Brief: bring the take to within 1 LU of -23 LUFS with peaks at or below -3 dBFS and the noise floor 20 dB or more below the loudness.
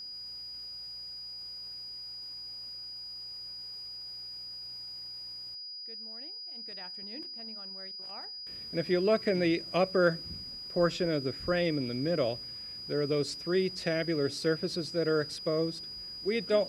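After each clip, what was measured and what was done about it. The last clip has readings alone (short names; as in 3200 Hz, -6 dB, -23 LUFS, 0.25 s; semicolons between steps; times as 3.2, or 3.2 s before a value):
steady tone 4900 Hz; tone level -40 dBFS; loudness -33.0 LUFS; peak -12.5 dBFS; loudness target -23.0 LUFS
-> notch 4900 Hz, Q 30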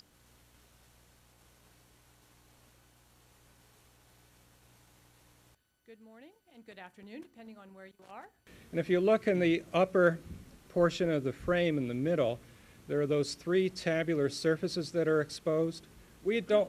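steady tone none; loudness -31.0 LUFS; peak -13.0 dBFS; loudness target -23.0 LUFS
-> gain +8 dB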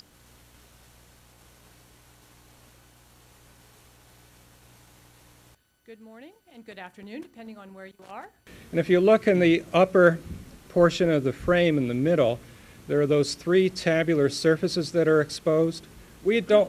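loudness -23.0 LUFS; peak -5.0 dBFS; noise floor -58 dBFS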